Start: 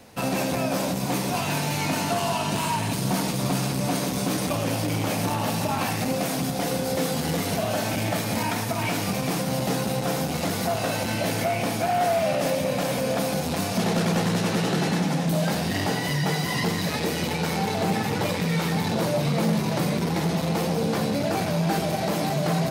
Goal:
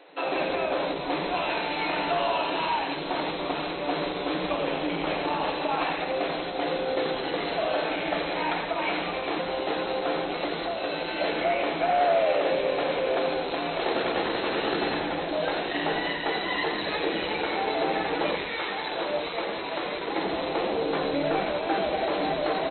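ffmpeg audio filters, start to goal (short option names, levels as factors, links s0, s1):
-filter_complex "[0:a]asettb=1/sr,asplit=3[s0][s1][s2];[s0]atrim=end=10.444[s3];[s1]atrim=start=10.44:end=11.16,asetpts=PTS-STARTPTS,afade=t=in:d=0.004:c=qsin,afade=t=out:st=0.716:d=0.004:c=qsin,acrossover=split=440|3000[s4][s5][s6];[s5]acompressor=threshold=0.0282:ratio=6[s7];[s4][s7][s6]amix=inputs=3:normalize=0[s8];[s2]atrim=start=11.156[s9];[s3][s8]acrossfade=d=0.004:c1=hsin:c2=qsin[s10];[s10][s9]acrossfade=d=0.004:c1=qsin:c2=hsin,asettb=1/sr,asplit=3[s11][s12][s13];[s11]atrim=end=18.364[s14];[s12]atrim=start=18.36:end=20.08,asetpts=PTS-STARTPTS,afade=t=in:d=0.004:c=qsin,afade=t=out:st=1.716:d=0.004:c=qsin,lowshelf=f=400:g=-10.5[s15];[s13]atrim=start=20.076[s16];[s14][s15]acrossfade=d=0.004:c1=hsin:c2=qsin[s17];[s17][s16]acrossfade=d=0.004:c1=qsin:c2=hsin,afftfilt=real='re*between(b*sr/4096,270,4200)':imag='im*between(b*sr/4096,270,4200)':win_size=4096:overlap=0.75,asplit=5[s18][s19][s20][s21][s22];[s19]adelay=86,afreqshift=-130,volume=0.398[s23];[s20]adelay=172,afreqshift=-260,volume=0.127[s24];[s21]adelay=258,afreqshift=-390,volume=0.0407[s25];[s22]adelay=344,afreqshift=-520,volume=0.013[s26];[s18][s23][s24][s25][s26]amix=inputs=5:normalize=0"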